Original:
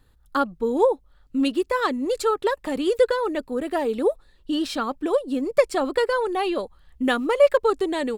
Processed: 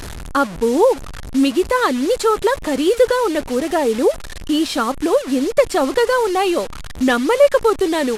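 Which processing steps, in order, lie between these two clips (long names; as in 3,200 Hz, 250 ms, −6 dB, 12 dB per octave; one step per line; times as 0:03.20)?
linear delta modulator 64 kbit/s, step −31 dBFS
in parallel at −1 dB: brickwall limiter −15 dBFS, peak gain reduction 10 dB
on the sum: level +1.5 dB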